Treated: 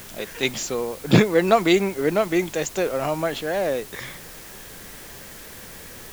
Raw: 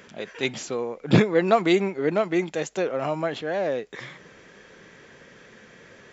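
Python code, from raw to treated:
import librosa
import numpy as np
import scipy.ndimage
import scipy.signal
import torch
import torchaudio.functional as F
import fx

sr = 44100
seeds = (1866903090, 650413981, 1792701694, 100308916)

y = fx.dmg_noise_colour(x, sr, seeds[0], colour='pink', level_db=-47.0)
y = fx.high_shelf(y, sr, hz=6000.0, db=10.5)
y = F.gain(torch.from_numpy(y), 2.0).numpy()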